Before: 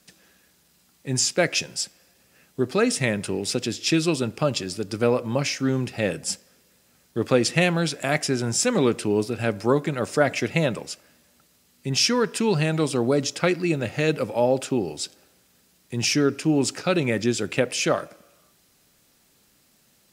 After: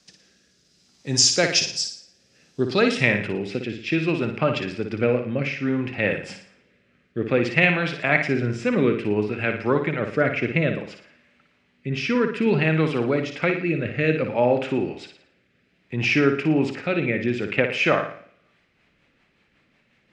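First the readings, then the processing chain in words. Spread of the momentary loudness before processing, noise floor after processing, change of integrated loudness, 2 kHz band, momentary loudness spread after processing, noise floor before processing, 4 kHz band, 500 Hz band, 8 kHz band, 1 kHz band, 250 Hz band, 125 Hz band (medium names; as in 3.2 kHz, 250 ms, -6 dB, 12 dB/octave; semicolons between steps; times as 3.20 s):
9 LU, -65 dBFS, +1.5 dB, +5.0 dB, 11 LU, -62 dBFS, 0.0 dB, +0.5 dB, no reading, +0.5 dB, +0.5 dB, +0.5 dB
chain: low-pass sweep 5.6 kHz -> 2.3 kHz, 2.58–3.13 s; rotary cabinet horn 0.6 Hz, later 5.5 Hz, at 18.07 s; flutter echo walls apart 9.8 m, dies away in 0.49 s; trim +1 dB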